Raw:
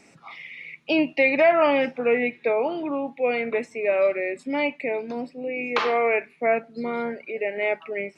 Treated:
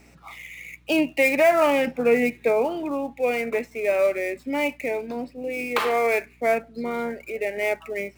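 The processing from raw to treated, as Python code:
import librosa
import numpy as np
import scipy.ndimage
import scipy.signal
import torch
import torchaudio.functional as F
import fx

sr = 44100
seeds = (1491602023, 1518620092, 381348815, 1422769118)

y = fx.dead_time(x, sr, dead_ms=0.054)
y = fx.low_shelf(y, sr, hz=260.0, db=9.0, at=(1.87, 2.65))
y = fx.add_hum(y, sr, base_hz=60, snr_db=33)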